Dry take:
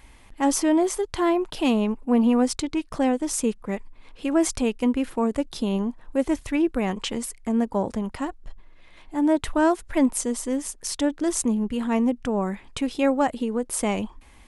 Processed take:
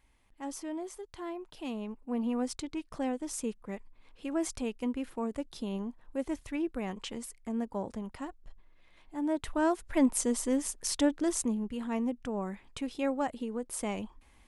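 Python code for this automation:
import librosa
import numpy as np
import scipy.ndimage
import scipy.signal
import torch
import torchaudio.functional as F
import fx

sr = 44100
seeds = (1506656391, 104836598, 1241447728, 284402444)

y = fx.gain(x, sr, db=fx.line((1.46, -18.0), (2.53, -11.0), (9.26, -11.0), (10.29, -3.0), (11.03, -3.0), (11.68, -10.0)))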